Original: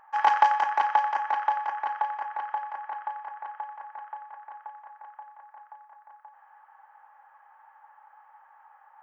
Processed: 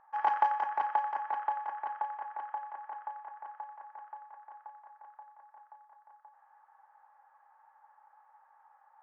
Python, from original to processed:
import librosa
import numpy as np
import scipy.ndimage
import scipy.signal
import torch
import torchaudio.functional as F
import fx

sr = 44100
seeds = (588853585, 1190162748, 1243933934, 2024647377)

y = fx.lowpass(x, sr, hz=1000.0, slope=6)
y = F.gain(torch.from_numpy(y), -4.5).numpy()